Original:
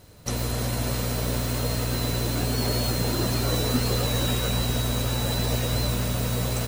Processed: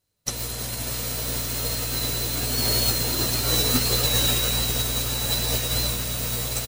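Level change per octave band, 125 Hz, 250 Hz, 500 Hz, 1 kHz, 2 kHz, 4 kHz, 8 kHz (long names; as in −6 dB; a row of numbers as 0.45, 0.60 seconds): −4.0, −4.5, −2.5, −1.5, +1.5, +5.5, +6.5 decibels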